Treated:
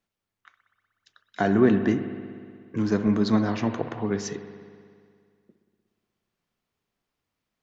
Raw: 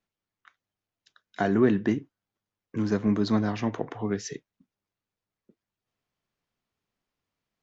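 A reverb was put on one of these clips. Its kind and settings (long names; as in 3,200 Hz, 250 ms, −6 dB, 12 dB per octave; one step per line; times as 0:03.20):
spring reverb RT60 2.1 s, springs 60 ms, chirp 75 ms, DRR 8.5 dB
level +2 dB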